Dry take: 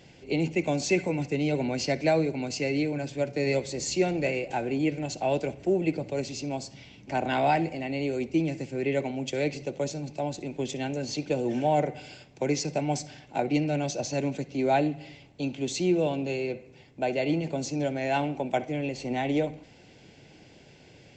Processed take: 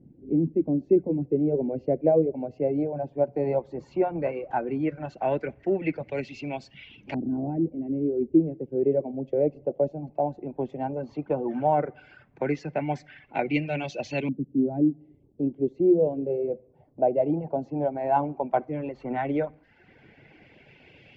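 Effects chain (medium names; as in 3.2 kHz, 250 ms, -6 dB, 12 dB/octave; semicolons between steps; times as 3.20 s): LFO low-pass saw up 0.14 Hz 250–3000 Hz; hum notches 60/120/180 Hz; reverb removal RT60 0.72 s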